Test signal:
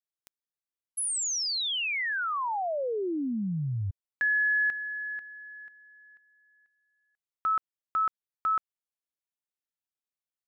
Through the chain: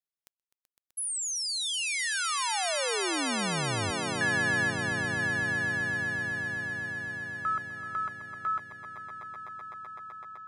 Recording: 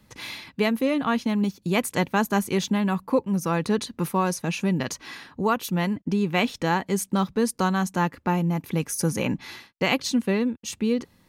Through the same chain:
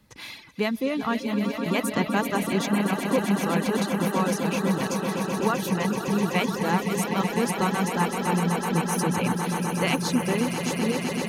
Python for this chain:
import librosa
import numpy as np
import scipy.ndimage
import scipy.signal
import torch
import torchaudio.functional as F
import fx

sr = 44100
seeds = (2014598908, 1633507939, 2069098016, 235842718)

y = fx.echo_swell(x, sr, ms=127, loudest=8, wet_db=-9)
y = fx.dereverb_blind(y, sr, rt60_s=0.66)
y = y * librosa.db_to_amplitude(-2.5)